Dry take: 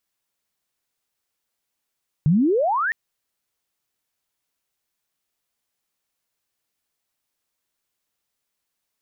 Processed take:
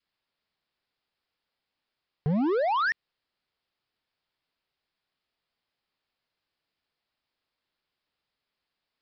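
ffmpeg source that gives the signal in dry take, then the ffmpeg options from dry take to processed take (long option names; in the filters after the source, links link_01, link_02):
-f lavfi -i "aevalsrc='pow(10,(-13-7*t/0.66)/20)*sin(2*PI*140*0.66/log(1900/140)*(exp(log(1900/140)*t/0.66)-1))':duration=0.66:sample_rate=44100"
-af "adynamicequalizer=threshold=0.02:dfrequency=730:dqfactor=1.9:tfrequency=730:tqfactor=1.9:attack=5:release=100:ratio=0.375:range=3:mode=cutabove:tftype=bell,acompressor=threshold=-21dB:ratio=1.5,aresample=11025,asoftclip=type=hard:threshold=-23.5dB,aresample=44100"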